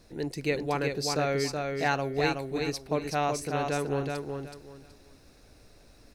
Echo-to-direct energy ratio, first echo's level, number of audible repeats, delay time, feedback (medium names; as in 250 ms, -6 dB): -3.5 dB, -4.0 dB, 3, 374 ms, 24%